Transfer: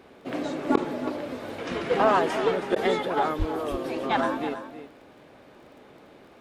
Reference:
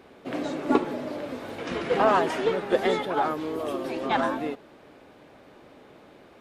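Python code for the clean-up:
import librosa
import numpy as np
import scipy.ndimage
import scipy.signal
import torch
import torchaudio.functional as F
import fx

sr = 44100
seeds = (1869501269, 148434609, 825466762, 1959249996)

y = fx.fix_declick_ar(x, sr, threshold=6.5)
y = fx.highpass(y, sr, hz=140.0, slope=24, at=(3.38, 3.5), fade=0.02)
y = fx.fix_interpolate(y, sr, at_s=(0.76, 2.75), length_ms=10.0)
y = fx.fix_echo_inverse(y, sr, delay_ms=323, level_db=-11.5)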